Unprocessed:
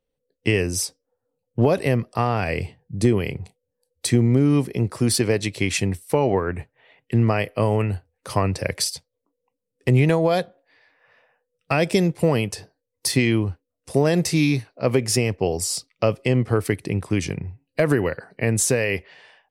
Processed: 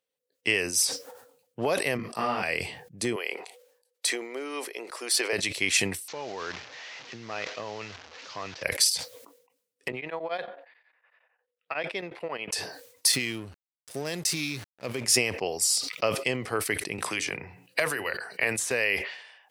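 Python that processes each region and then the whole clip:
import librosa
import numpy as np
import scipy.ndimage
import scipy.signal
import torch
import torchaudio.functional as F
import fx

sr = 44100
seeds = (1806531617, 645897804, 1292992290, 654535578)

y = fx.chain(x, sr, fx.peak_eq(hz=220.0, db=8.5, octaves=1.4),
    fx.doubler(ms=38.0, db=-4.0),
    fx.detune_double(cents=18), at=(1.97, 2.43))
y = fx.chain(y, sr, fx.highpass(hz=380.0, slope=24),
    fx.high_shelf(hz=4900.0, db=-5.5), at=(3.16, 5.33))
y = fx.chain(y, sr, fx.delta_mod(bps=32000, step_db=-30.0),
    fx.level_steps(step_db=14), at=(6.08, 8.63))
y = fx.chain(y, sr, fx.highpass(hz=580.0, slope=6),
    fx.air_absorb(metres=390.0),
    fx.tremolo_abs(hz=11.0), at=(9.88, 12.52))
y = fx.chain(y, sr, fx.peak_eq(hz=1000.0, db=-10.0, octaves=2.9),
    fx.backlash(play_db=-35.5), at=(13.12, 15.04))
y = fx.chain(y, sr, fx.peak_eq(hz=200.0, db=-7.0, octaves=2.6),
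    fx.hum_notches(base_hz=60, count=8),
    fx.band_squash(depth_pct=100), at=(16.98, 18.71))
y = fx.highpass(y, sr, hz=1400.0, slope=6)
y = fx.sustainer(y, sr, db_per_s=77.0)
y = y * 10.0 ** (1.5 / 20.0)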